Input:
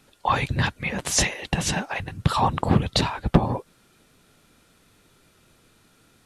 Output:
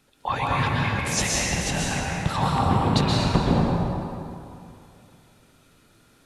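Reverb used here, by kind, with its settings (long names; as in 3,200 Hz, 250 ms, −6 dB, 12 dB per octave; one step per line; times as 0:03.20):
dense smooth reverb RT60 2.6 s, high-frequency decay 0.65×, pre-delay 110 ms, DRR −4.5 dB
level −5 dB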